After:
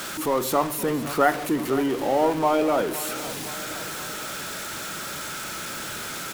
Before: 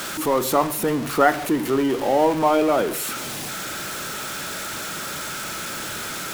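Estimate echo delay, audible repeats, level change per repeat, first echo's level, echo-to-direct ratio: 515 ms, 3, −4.5 dB, −15.0 dB, −13.5 dB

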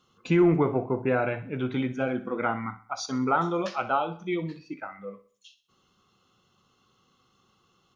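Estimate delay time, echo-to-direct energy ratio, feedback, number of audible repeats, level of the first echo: 63 ms, −14.0 dB, 42%, 3, −15.0 dB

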